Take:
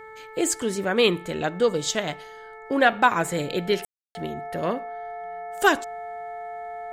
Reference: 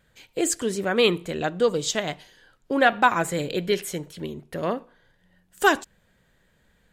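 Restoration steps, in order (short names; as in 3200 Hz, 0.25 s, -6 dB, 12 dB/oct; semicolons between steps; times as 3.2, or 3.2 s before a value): de-hum 438 Hz, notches 5; notch 700 Hz, Q 30; room tone fill 3.85–4.15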